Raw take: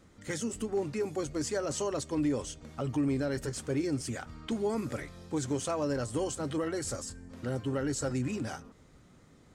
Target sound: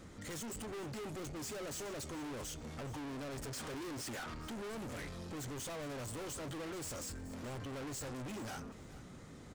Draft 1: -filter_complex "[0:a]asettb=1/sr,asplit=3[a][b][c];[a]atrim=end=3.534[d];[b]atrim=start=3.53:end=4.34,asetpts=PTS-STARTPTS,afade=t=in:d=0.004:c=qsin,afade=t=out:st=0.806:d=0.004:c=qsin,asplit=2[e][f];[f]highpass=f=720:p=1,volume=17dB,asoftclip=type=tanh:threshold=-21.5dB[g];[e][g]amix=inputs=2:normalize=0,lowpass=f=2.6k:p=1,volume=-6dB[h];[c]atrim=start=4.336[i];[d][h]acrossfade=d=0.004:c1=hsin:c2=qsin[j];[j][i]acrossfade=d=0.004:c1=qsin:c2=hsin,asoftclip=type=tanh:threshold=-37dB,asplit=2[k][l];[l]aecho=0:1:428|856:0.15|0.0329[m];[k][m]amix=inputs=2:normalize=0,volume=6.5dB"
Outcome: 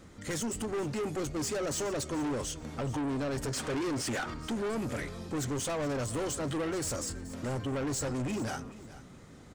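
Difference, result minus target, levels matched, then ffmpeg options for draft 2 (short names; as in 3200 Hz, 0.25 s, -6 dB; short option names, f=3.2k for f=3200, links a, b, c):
soft clip: distortion -5 dB
-filter_complex "[0:a]asettb=1/sr,asplit=3[a][b][c];[a]atrim=end=3.534[d];[b]atrim=start=3.53:end=4.34,asetpts=PTS-STARTPTS,afade=t=in:d=0.004:c=qsin,afade=t=out:st=0.806:d=0.004:c=qsin,asplit=2[e][f];[f]highpass=f=720:p=1,volume=17dB,asoftclip=type=tanh:threshold=-21.5dB[g];[e][g]amix=inputs=2:normalize=0,lowpass=f=2.6k:p=1,volume=-6dB[h];[c]atrim=start=4.336[i];[d][h]acrossfade=d=0.004:c1=hsin:c2=qsin[j];[j][i]acrossfade=d=0.004:c1=qsin:c2=hsin,asoftclip=type=tanh:threshold=-49dB,asplit=2[k][l];[l]aecho=0:1:428|856:0.15|0.0329[m];[k][m]amix=inputs=2:normalize=0,volume=6.5dB"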